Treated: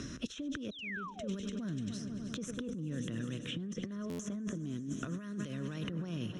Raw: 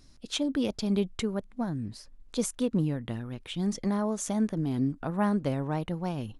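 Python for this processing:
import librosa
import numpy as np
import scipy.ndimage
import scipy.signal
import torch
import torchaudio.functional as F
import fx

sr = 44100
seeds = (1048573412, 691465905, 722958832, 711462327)

y = scipy.signal.sosfilt(scipy.signal.butter(2, 40.0, 'highpass', fs=sr, output='sos'), x)
y = fx.peak_eq(y, sr, hz=2200.0, db=-10.5, octaves=0.28)
y = fx.echo_heads(y, sr, ms=98, heads='all three', feedback_pct=64, wet_db=-21.0)
y = fx.spec_paint(y, sr, seeds[0], shape='fall', start_s=0.71, length_s=0.57, low_hz=510.0, high_hz=4100.0, level_db=-23.0)
y = fx.lowpass_res(y, sr, hz=5600.0, q=4.2)
y = fx.over_compress(y, sr, threshold_db=-35.0, ratio=-1.0)
y = fx.low_shelf(y, sr, hz=80.0, db=-8.0)
y = fx.fixed_phaser(y, sr, hz=2000.0, stages=4)
y = fx.buffer_glitch(y, sr, at_s=(4.09,), block=512, repeats=8)
y = fx.band_squash(y, sr, depth_pct=100)
y = F.gain(torch.from_numpy(y), -3.5).numpy()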